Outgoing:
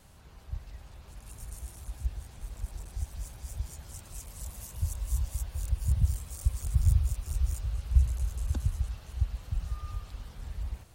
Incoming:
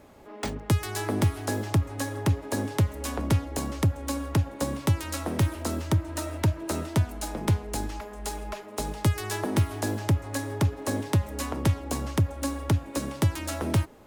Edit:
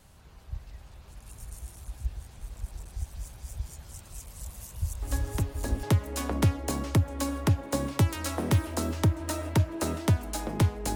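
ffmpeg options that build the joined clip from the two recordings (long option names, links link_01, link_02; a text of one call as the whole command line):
ffmpeg -i cue0.wav -i cue1.wav -filter_complex "[1:a]asplit=2[link_01][link_02];[0:a]apad=whole_dur=10.95,atrim=end=10.95,atrim=end=5.832[link_03];[link_02]atrim=start=2.708:end=7.83[link_04];[link_01]atrim=start=1.9:end=2.71,asetpts=PTS-STARTPTS,volume=-6.5dB,afade=type=in:duration=0.004:curve=hsin,afade=type=out:start_time=0.806:duration=0.004:curve=hsin,adelay=5020[link_05];[link_03][link_04]acrossfade=duration=0.004:curve1=hsin:curve2=hsin[link_06];[link_06][link_05]amix=inputs=2:normalize=0" out.wav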